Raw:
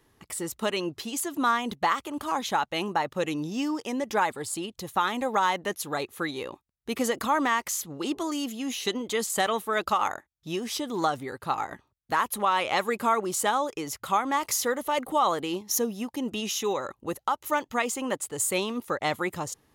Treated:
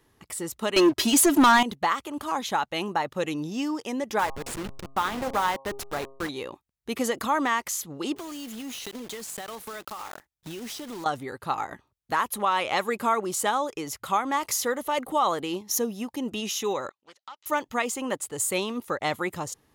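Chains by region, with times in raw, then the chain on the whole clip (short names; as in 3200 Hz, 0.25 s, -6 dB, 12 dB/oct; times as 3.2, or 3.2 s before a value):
0.76–1.63 comb 3.1 ms, depth 85% + sample leveller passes 3
4.19–6.29 level-crossing sampler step -28 dBFS + high shelf 5200 Hz -5 dB + de-hum 135.2 Hz, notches 9
8.16–11.06 block floating point 3-bit + compressor 10:1, threshold -33 dBFS
16.89–17.46 LPF 5000 Hz 24 dB/oct + differentiator + Doppler distortion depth 0.2 ms
whole clip: dry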